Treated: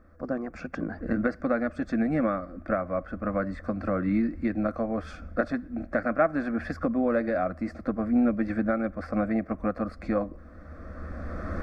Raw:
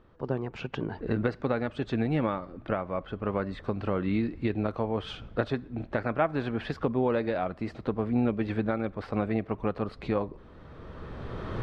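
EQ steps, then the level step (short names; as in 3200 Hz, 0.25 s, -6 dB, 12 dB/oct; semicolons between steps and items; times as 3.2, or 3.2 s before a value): bell 80 Hz +13.5 dB 0.28 oct; fixed phaser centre 610 Hz, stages 8; notch 3900 Hz, Q 6.2; +4.5 dB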